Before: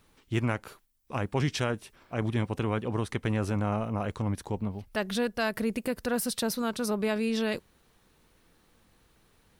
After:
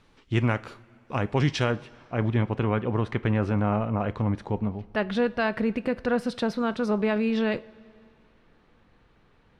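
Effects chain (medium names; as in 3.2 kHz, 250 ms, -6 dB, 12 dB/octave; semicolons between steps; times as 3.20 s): low-pass 5 kHz 12 dB/octave, from 1.72 s 2.7 kHz; reverberation, pre-delay 3 ms, DRR 14 dB; trim +4 dB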